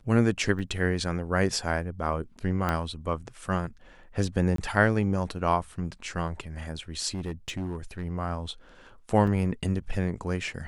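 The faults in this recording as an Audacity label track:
0.590000	0.590000	drop-out 4 ms
2.690000	2.690000	click −14 dBFS
4.560000	4.580000	drop-out 23 ms
7.140000	8.060000	clipping −28 dBFS
9.270000	9.270000	drop-out 4.7 ms

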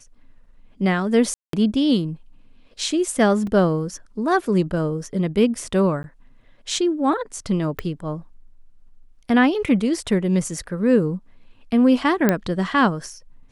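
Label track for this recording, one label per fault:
1.340000	1.530000	drop-out 193 ms
3.470000	3.470000	drop-out 2.8 ms
6.030000	6.040000	drop-out 11 ms
7.790000	7.790000	click −14 dBFS
12.290000	12.290000	click −4 dBFS

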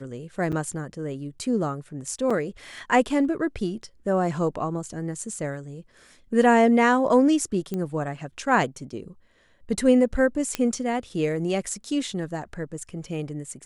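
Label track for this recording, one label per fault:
0.520000	0.530000	drop-out 6.7 ms
2.300000	2.310000	drop-out 5 ms
7.740000	7.740000	click −17 dBFS
10.550000	10.550000	click −10 dBFS

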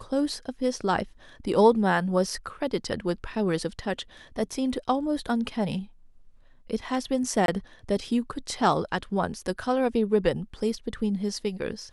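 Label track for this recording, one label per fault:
7.460000	7.480000	drop-out 22 ms

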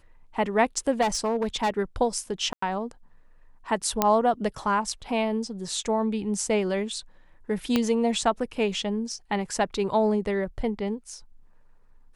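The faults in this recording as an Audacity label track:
1.010000	1.700000	clipping −20 dBFS
2.530000	2.620000	drop-out 94 ms
4.020000	4.020000	click −5 dBFS
7.760000	7.760000	click −9 dBFS

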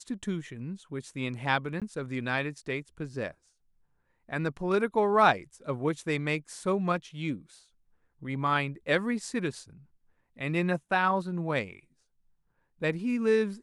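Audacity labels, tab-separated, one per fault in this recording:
1.800000	1.820000	drop-out 17 ms

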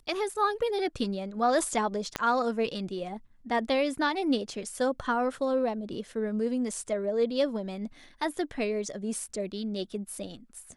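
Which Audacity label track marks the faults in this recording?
2.160000	2.160000	click −13 dBFS

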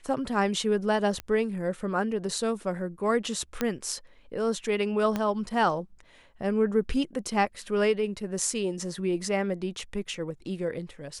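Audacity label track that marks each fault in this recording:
1.200000	1.200000	click −19 dBFS
3.610000	3.610000	click −12 dBFS
5.160000	5.160000	click −15 dBFS

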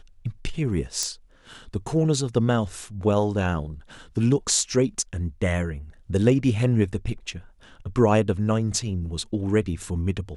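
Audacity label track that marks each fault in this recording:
1.030000	1.030000	click −12 dBFS

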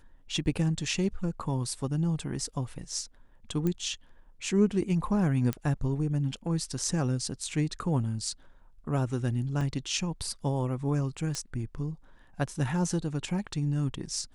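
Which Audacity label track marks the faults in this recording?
3.670000	3.670000	click −18 dBFS
5.530000	5.530000	click −16 dBFS
9.610000	9.610000	drop-out 2.5 ms
11.350000	11.350000	click −19 dBFS

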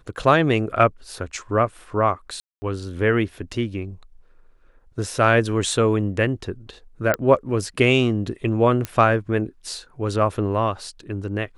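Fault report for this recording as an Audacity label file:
2.400000	2.620000	drop-out 220 ms
7.140000	7.140000	click −6 dBFS
8.850000	8.850000	click −11 dBFS

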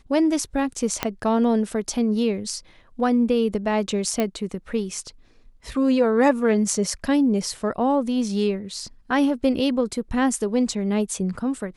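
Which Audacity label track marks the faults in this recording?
1.030000	1.030000	click −6 dBFS
4.200000	4.200000	click −10 dBFS

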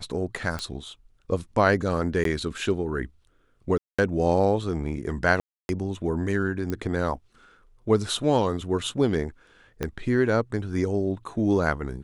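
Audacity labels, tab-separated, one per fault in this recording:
0.590000	0.590000	click −16 dBFS
2.240000	2.250000	drop-out 13 ms
3.780000	3.980000	drop-out 205 ms
5.400000	5.690000	drop-out 291 ms
6.700000	6.700000	click −17 dBFS
9.830000	9.830000	click −14 dBFS

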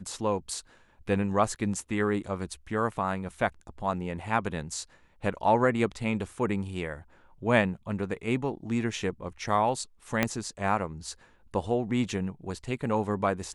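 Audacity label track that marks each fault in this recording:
10.230000	10.230000	click −9 dBFS

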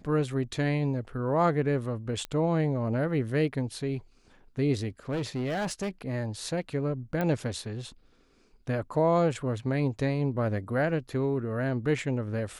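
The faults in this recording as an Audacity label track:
2.250000	2.250000	click −20 dBFS
5.090000	5.890000	clipping −27 dBFS
7.210000	7.210000	click −17 dBFS

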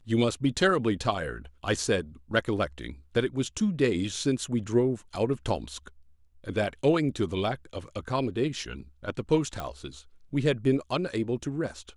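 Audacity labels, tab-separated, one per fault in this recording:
9.600000	9.600000	click −20 dBFS

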